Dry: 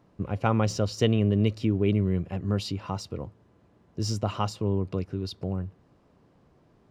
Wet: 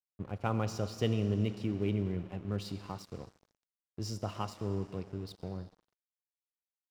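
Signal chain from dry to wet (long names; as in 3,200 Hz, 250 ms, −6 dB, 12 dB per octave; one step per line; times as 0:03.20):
four-comb reverb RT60 2.5 s, combs from 27 ms, DRR 10 dB
dead-zone distortion −42.5 dBFS
level −8 dB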